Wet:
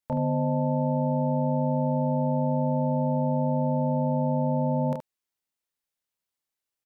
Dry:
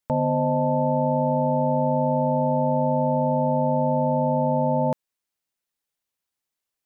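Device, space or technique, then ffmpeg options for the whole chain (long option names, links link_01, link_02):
slapback doubling: -filter_complex "[0:a]asplit=3[link_01][link_02][link_03];[link_02]adelay=28,volume=-3dB[link_04];[link_03]adelay=74,volume=-8dB[link_05];[link_01][link_04][link_05]amix=inputs=3:normalize=0,volume=-5.5dB"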